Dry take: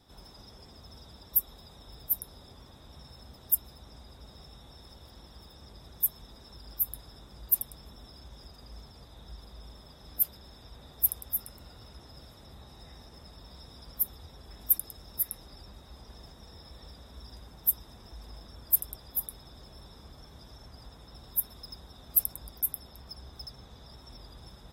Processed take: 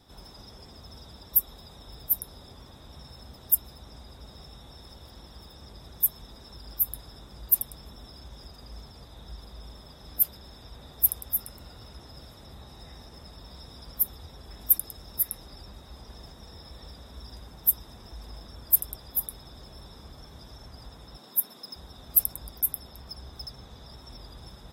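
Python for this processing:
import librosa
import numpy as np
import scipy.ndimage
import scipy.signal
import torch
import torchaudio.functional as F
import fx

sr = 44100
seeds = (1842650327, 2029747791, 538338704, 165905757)

y = fx.highpass(x, sr, hz=180.0, slope=24, at=(21.17, 21.76))
y = y * 10.0 ** (3.5 / 20.0)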